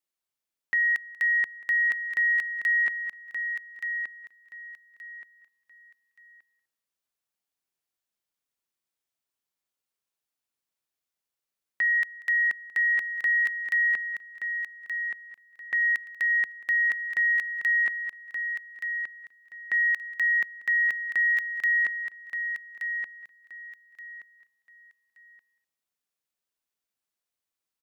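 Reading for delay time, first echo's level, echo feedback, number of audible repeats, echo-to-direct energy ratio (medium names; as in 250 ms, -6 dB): 188 ms, -20.5 dB, no regular repeats, 5, -7.0 dB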